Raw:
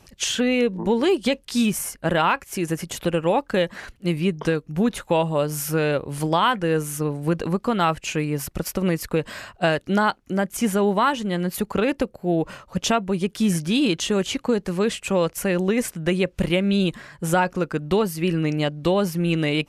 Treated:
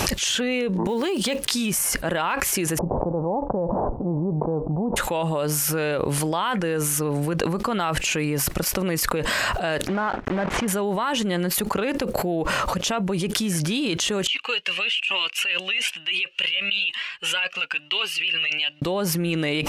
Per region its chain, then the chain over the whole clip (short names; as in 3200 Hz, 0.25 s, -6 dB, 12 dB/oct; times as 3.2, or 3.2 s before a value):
0.87–1.53 block floating point 7-bit + compressor 2:1, threshold -38 dBFS + HPF 130 Hz 6 dB/oct
2.77–4.96 spectral whitening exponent 0.6 + steep low-pass 910 Hz 48 dB/oct
9.88–10.68 block floating point 3-bit + LPF 1700 Hz
14.27–18.82 band-pass 2800 Hz, Q 11 + cascading flanger rising 1.1 Hz
whole clip: low shelf 300 Hz -7 dB; fast leveller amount 100%; gain -6 dB